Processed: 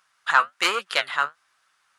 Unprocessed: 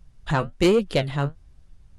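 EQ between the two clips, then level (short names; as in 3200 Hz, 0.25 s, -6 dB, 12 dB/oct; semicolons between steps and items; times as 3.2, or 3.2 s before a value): resonant high-pass 1300 Hz, resonance Q 2.8; +4.5 dB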